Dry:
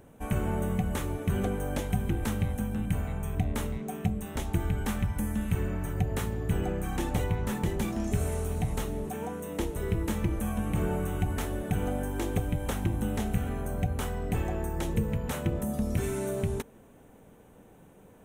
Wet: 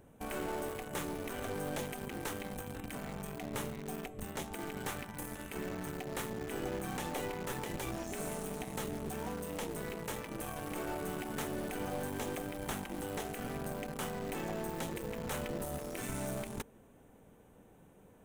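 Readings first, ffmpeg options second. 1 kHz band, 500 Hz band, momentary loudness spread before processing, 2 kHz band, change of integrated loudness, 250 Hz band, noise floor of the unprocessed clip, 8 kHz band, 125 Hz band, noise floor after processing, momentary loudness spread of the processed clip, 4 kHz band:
−3.5 dB, −5.0 dB, 3 LU, −2.5 dB, −8.5 dB, −9.0 dB, −55 dBFS, −2.5 dB, −15.0 dB, −60 dBFS, 4 LU, −2.0 dB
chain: -filter_complex "[0:a]afftfilt=real='re*lt(hypot(re,im),0.158)':imag='im*lt(hypot(re,im),0.158)':win_size=1024:overlap=0.75,asplit=2[link_01][link_02];[link_02]acrusher=bits=3:dc=4:mix=0:aa=0.000001,volume=-4.5dB[link_03];[link_01][link_03]amix=inputs=2:normalize=0,volume=-5.5dB"

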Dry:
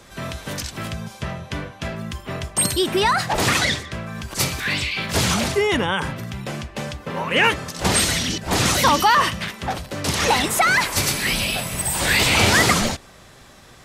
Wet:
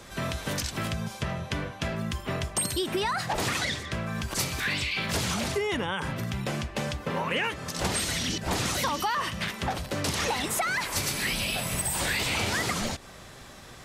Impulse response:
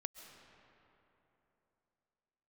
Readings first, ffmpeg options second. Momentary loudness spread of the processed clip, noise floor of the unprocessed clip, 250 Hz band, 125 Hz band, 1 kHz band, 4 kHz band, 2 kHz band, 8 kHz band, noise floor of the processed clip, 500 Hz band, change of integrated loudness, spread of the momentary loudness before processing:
6 LU, −46 dBFS, −7.0 dB, −6.5 dB, −10.0 dB, −8.5 dB, −9.0 dB, −8.0 dB, −46 dBFS, −8.0 dB, −9.0 dB, 15 LU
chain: -af "acompressor=threshold=-26dB:ratio=6"

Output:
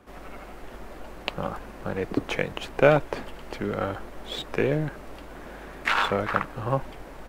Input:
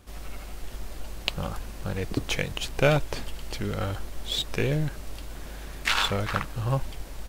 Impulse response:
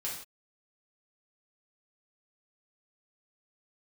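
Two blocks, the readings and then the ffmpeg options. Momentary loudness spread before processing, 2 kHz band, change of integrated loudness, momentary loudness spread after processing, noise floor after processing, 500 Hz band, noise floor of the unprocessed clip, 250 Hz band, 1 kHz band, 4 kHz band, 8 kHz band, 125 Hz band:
17 LU, +2.0 dB, +1.5 dB, 21 LU, −43 dBFS, +5.0 dB, −40 dBFS, +2.0 dB, +4.5 dB, −5.5 dB, −9.5 dB, −3.5 dB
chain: -filter_complex "[0:a]acrossover=split=190 2200:gain=0.224 1 0.178[link_01][link_02][link_03];[link_01][link_02][link_03]amix=inputs=3:normalize=0,volume=5dB"

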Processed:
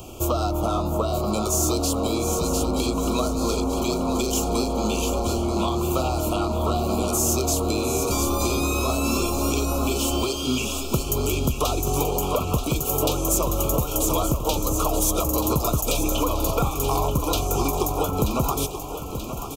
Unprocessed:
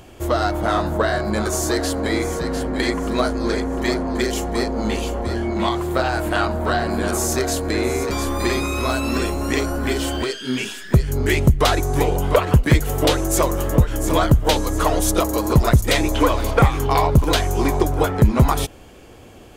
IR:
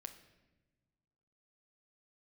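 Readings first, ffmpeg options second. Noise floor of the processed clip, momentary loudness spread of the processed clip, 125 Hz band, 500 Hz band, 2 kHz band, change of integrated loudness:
−31 dBFS, 3 LU, −6.5 dB, −3.5 dB, −10.5 dB, −3.5 dB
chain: -filter_complex "[0:a]acrossover=split=250|580[link_01][link_02][link_03];[link_01]acompressor=threshold=-29dB:ratio=4[link_04];[link_02]acompressor=threshold=-34dB:ratio=4[link_05];[link_03]acompressor=threshold=-30dB:ratio=4[link_06];[link_04][link_05][link_06]amix=inputs=3:normalize=0,aexciter=amount=2.4:drive=2.1:freq=5700,asplit=2[link_07][link_08];[link_08]asoftclip=type=tanh:threshold=-20dB,volume=-5dB[link_09];[link_07][link_09]amix=inputs=2:normalize=0,asuperstop=centerf=1800:order=20:qfactor=1.9,aecho=1:1:932|1864|2796|3728|4660|5592|6524:0.316|0.183|0.106|0.0617|0.0358|0.0208|0.012"

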